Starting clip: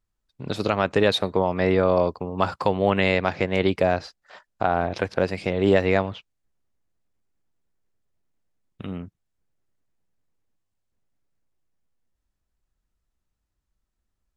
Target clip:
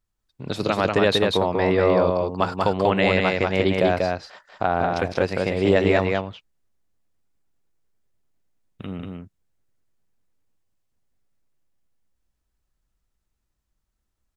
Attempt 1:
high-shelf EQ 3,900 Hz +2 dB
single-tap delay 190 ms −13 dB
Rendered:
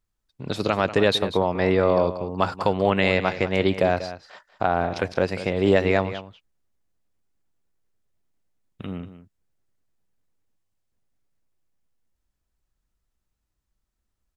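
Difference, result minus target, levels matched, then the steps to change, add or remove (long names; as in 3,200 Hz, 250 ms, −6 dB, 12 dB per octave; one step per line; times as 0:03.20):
echo-to-direct −10 dB
change: single-tap delay 190 ms −3 dB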